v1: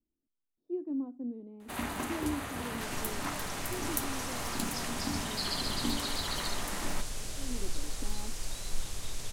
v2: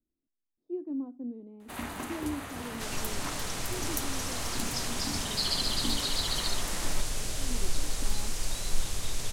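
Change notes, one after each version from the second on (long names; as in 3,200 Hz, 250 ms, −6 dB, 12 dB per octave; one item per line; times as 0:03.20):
first sound: send −9.5 dB
second sound +5.5 dB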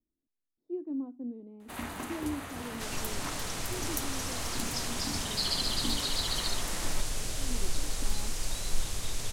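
reverb: off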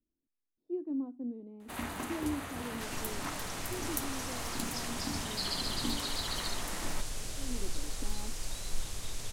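second sound −5.0 dB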